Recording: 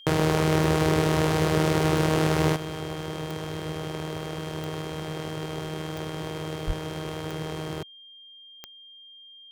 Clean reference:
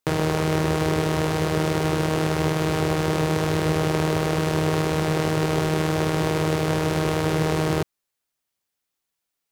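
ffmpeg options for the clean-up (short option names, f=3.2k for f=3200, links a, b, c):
-filter_complex "[0:a]adeclick=t=4,bandreject=f=3.2k:w=30,asplit=3[a][b][c];[a]afade=t=out:st=6.66:d=0.02[d];[b]highpass=f=140:w=0.5412,highpass=f=140:w=1.3066,afade=t=in:st=6.66:d=0.02,afade=t=out:st=6.78:d=0.02[e];[c]afade=t=in:st=6.78:d=0.02[f];[d][e][f]amix=inputs=3:normalize=0,asetnsamples=n=441:p=0,asendcmd='2.56 volume volume 11dB',volume=0dB"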